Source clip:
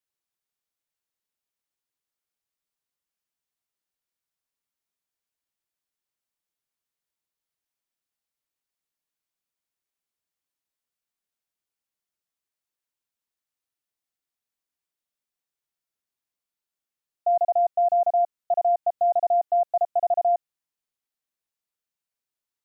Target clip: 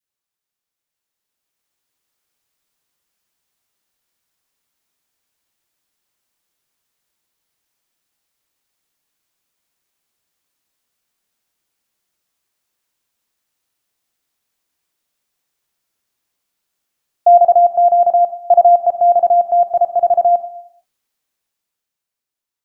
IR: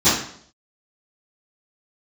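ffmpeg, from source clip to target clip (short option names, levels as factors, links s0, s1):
-filter_complex "[0:a]asplit=2[s0][s1];[1:a]atrim=start_sample=2205,lowshelf=f=440:g=-6,adelay=30[s2];[s1][s2]afir=irnorm=-1:irlink=0,volume=0.0282[s3];[s0][s3]amix=inputs=2:normalize=0,adynamicequalizer=threshold=0.0251:dfrequency=780:dqfactor=0.87:tfrequency=780:tqfactor=0.87:attack=5:release=100:ratio=0.375:range=3:mode=cutabove:tftype=bell,dynaudnorm=f=230:g=13:m=3.55,volume=1.41"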